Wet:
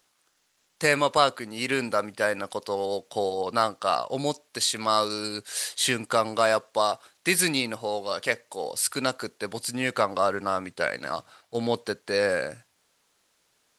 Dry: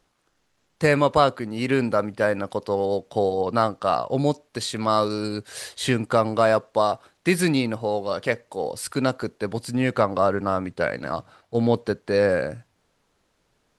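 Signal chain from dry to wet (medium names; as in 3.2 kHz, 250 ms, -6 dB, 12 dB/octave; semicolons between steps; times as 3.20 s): tilt EQ +3 dB/octave; trim -2 dB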